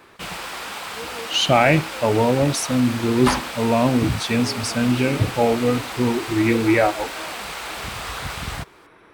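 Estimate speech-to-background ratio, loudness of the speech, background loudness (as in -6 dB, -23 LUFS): 10.0 dB, -20.0 LUFS, -30.0 LUFS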